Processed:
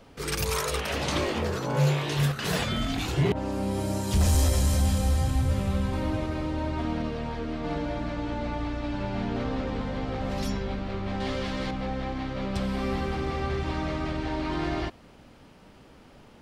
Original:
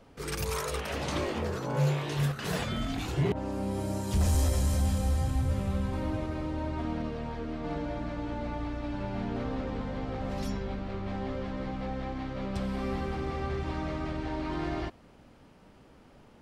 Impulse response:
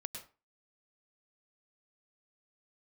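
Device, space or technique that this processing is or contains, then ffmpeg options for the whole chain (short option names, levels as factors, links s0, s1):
presence and air boost: -filter_complex "[0:a]equalizer=f=3700:t=o:w=1.9:g=3.5,highshelf=f=12000:g=4,asettb=1/sr,asplit=3[s0][s1][s2];[s0]atrim=end=8.114[s3];[s1]atrim=start=8.11:end=9.65,asetpts=PTS-STARTPTS,afade=t=in:d=0.004:c=qsin,afade=t=out:st=1.536:d=0.004:c=qsin,lowpass=f=10000:w=0.5412,lowpass=f=10000:w=1.3066[s4];[s2]atrim=start=9.646[s5];[s3][s4]acrossfade=d=0.004:c1=hsin:c2=qsin[s6];[s6][s5]acrossfade=d=0.004:c1=qsin:c2=hsin,asettb=1/sr,asplit=3[s7][s8][s9];[s7]atrim=end=11.204[s10];[s8]atrim=start=11.2:end=11.71,asetpts=PTS-STARTPTS,afade=t=in:d=0.004:c=qsin,afade=t=out:st=0.506:d=0.004:c=qsin,highshelf=f=2300:g=11.5[s11];[s9]atrim=start=11.706[s12];[s10][s11]acrossfade=d=0.004:c1=hsin:c2=qsin[s13];[s13][s12]acrossfade=d=0.004:c1=qsin:c2=hsin,volume=1.5"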